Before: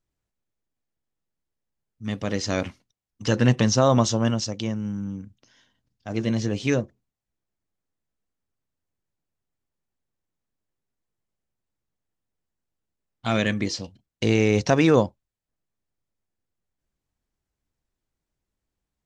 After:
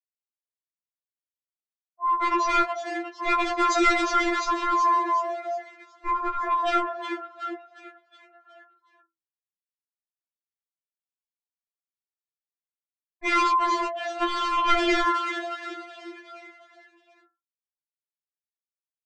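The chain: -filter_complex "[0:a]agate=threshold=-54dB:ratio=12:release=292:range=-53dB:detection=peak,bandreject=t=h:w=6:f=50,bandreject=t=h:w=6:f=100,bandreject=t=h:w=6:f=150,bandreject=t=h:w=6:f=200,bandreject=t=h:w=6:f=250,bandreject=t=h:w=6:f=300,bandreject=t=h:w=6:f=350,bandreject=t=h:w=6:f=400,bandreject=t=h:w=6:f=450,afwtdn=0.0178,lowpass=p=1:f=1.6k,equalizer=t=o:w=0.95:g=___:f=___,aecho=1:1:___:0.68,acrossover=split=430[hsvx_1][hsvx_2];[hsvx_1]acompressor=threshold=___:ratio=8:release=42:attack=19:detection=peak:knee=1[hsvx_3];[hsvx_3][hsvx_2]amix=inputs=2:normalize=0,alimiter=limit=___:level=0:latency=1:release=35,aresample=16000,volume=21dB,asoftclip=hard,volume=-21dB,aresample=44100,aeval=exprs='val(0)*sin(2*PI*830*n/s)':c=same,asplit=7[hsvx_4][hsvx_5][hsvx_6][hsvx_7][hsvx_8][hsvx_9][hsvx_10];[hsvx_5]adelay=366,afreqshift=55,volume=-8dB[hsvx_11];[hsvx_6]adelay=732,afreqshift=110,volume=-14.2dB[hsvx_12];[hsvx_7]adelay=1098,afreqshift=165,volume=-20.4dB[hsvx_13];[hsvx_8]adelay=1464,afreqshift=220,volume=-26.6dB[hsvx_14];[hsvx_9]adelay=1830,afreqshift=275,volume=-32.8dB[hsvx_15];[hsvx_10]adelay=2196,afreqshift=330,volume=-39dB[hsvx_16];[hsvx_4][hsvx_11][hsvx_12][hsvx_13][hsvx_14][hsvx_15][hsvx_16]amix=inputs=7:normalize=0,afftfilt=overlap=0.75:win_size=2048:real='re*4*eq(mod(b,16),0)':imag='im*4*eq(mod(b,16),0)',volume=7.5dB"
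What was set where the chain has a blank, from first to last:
15, 1.1k, 5, -32dB, -8.5dB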